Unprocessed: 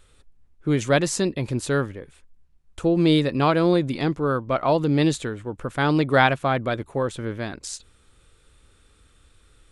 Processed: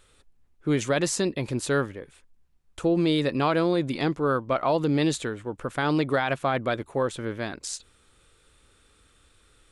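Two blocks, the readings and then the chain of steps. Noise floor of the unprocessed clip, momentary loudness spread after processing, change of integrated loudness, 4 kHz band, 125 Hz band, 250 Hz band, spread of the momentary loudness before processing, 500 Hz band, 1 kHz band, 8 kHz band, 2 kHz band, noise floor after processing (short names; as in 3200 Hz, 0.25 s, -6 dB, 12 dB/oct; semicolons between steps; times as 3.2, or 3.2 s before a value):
-58 dBFS, 10 LU, -3.5 dB, -3.0 dB, -5.5 dB, -3.5 dB, 13 LU, -2.5 dB, -4.0 dB, -0.5 dB, -4.0 dB, -62 dBFS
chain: limiter -13.5 dBFS, peak gain reduction 11 dB; low shelf 170 Hz -7 dB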